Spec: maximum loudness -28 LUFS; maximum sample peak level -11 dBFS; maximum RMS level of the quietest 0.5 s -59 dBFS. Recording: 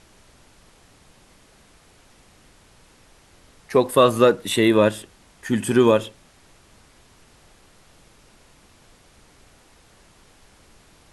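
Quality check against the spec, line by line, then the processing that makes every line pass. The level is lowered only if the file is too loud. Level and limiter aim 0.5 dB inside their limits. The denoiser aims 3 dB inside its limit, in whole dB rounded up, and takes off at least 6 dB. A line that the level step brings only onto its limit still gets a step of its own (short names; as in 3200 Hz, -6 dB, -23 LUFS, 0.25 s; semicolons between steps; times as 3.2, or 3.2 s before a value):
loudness -18.5 LUFS: fail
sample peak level -3.5 dBFS: fail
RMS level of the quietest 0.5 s -54 dBFS: fail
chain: gain -10 dB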